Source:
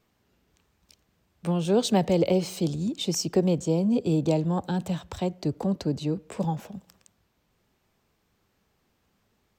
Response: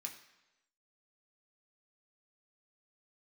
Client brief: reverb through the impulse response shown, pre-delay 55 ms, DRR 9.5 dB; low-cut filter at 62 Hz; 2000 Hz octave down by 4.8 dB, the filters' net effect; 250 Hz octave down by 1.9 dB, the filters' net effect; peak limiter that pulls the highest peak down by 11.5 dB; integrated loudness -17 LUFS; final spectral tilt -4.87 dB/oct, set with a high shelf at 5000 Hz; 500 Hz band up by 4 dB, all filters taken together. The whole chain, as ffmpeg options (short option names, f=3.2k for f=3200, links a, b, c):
-filter_complex "[0:a]highpass=62,equalizer=f=250:t=o:g=-5,equalizer=f=500:t=o:g=6.5,equalizer=f=2k:t=o:g=-8,highshelf=f=5k:g=6,alimiter=limit=-18.5dB:level=0:latency=1,asplit=2[a][b];[1:a]atrim=start_sample=2205,adelay=55[c];[b][c]afir=irnorm=-1:irlink=0,volume=-6.5dB[d];[a][d]amix=inputs=2:normalize=0,volume=12dB"